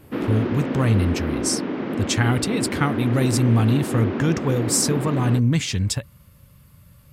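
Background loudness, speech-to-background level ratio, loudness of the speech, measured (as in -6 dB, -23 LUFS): -26.5 LUFS, 4.5 dB, -22.0 LUFS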